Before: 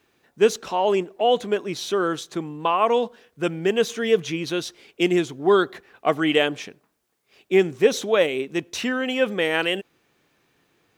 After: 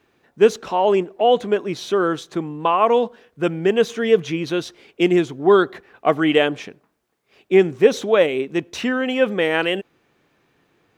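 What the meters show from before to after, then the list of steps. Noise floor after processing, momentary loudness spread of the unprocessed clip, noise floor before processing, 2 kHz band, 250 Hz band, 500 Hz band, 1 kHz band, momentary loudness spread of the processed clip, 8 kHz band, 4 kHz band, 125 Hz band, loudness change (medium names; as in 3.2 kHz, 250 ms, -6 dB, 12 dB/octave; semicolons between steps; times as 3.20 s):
-66 dBFS, 9 LU, -69 dBFS, +1.5 dB, +4.0 dB, +4.0 dB, +3.5 dB, 9 LU, no reading, 0.0 dB, +4.0 dB, +3.5 dB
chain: treble shelf 3.4 kHz -9 dB; trim +4 dB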